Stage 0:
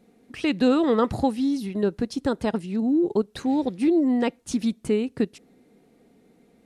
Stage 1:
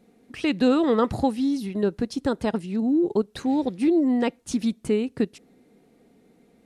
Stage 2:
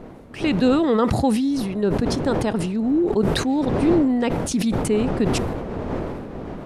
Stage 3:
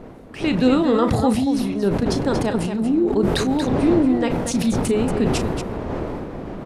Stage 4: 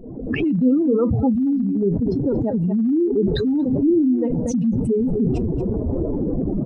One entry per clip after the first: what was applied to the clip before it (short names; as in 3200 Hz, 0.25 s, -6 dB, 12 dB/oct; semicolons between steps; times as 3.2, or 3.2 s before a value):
nothing audible
wind noise 440 Hz -34 dBFS; sustainer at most 30 dB/s; gain +1.5 dB
loudspeakers at several distances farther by 12 m -10 dB, 80 m -8 dB
spectral contrast raised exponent 2.6; recorder AGC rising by 61 dB/s